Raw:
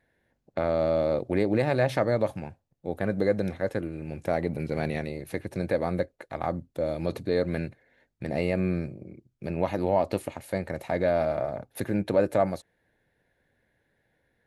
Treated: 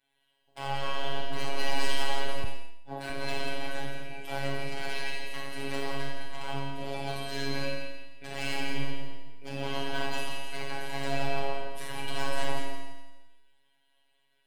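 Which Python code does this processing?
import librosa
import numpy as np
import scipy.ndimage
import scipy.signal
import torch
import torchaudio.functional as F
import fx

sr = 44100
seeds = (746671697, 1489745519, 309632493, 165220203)

p1 = fx.spec_clip(x, sr, under_db=18)
p2 = fx.peak_eq(p1, sr, hz=3100.0, db=9.5, octaves=0.34)
p3 = fx.level_steps(p2, sr, step_db=11)
p4 = p2 + (p3 * librosa.db_to_amplitude(3.0))
p5 = fx.chorus_voices(p4, sr, voices=2, hz=0.23, base_ms=20, depth_ms=1.9, mix_pct=30)
p6 = 10.0 ** (-19.0 / 20.0) * (np.abs((p5 / 10.0 ** (-19.0 / 20.0) + 3.0) % 4.0 - 2.0) - 1.0)
p7 = fx.stiff_resonator(p6, sr, f0_hz=85.0, decay_s=0.56, stiffness=0.008)
p8 = fx.rev_schroeder(p7, sr, rt60_s=1.0, comb_ms=28, drr_db=-2.5)
p9 = fx.robotise(p8, sr, hz=138.0)
p10 = p9 + fx.echo_feedback(p9, sr, ms=170, feedback_pct=33, wet_db=-8.5, dry=0)
p11 = fx.band_widen(p10, sr, depth_pct=100, at=(2.44, 3.1))
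y = p11 * librosa.db_to_amplitude(3.0)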